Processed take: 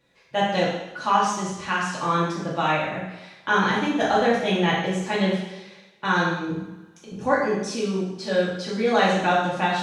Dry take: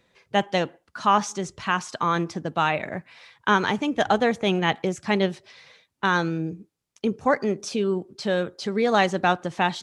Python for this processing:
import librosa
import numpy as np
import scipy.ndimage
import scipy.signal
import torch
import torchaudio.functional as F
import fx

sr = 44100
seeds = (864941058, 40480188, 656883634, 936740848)

y = fx.over_compress(x, sr, threshold_db=-30.0, ratio=-0.5, at=(6.49, 7.26))
y = fx.rev_double_slope(y, sr, seeds[0], early_s=0.86, late_s=2.2, knee_db=-23, drr_db=-7.5)
y = y * librosa.db_to_amplitude(-7.0)